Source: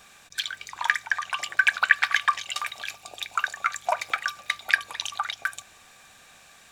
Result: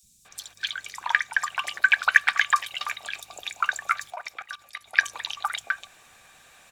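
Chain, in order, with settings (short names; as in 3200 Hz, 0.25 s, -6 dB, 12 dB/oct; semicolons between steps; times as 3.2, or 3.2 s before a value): three bands offset in time highs, lows, mids 30/250 ms, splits 230/5000 Hz; 4.1–4.97 level quantiser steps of 18 dB; harmonic-percussive split percussive +4 dB; gain -2.5 dB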